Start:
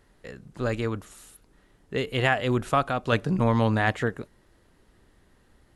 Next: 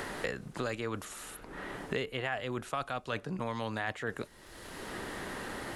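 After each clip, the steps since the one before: reverse; compressor, threshold -31 dBFS, peak gain reduction 13.5 dB; reverse; low shelf 360 Hz -9.5 dB; three-band squash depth 100%; gain +2.5 dB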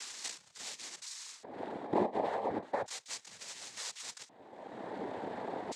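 half-waves squared off; LFO band-pass square 0.35 Hz 510–5500 Hz; noise vocoder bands 6; gain +3.5 dB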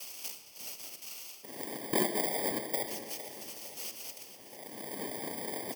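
FFT order left unsorted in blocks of 32 samples; feedback echo 0.457 s, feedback 53%, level -13 dB; on a send at -8 dB: reverb RT60 2.0 s, pre-delay 25 ms; on the sum: gain +1 dB

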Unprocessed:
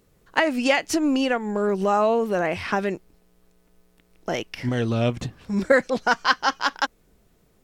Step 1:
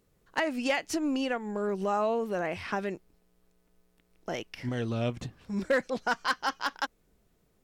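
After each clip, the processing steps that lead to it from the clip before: overloaded stage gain 11 dB; gain -8 dB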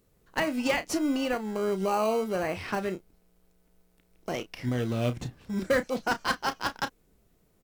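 high shelf 9300 Hz +6 dB; in parallel at -9 dB: sample-and-hold 25×; on the sum: doubler 32 ms -12 dB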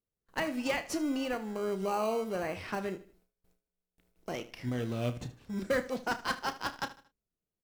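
gate with hold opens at -52 dBFS; feedback echo 76 ms, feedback 37%, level -16 dB; gain -5 dB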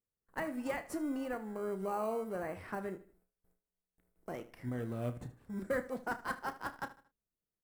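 band shelf 4000 Hz -11 dB; gain -4.5 dB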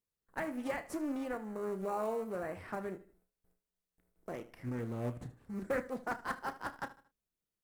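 Doppler distortion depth 0.44 ms

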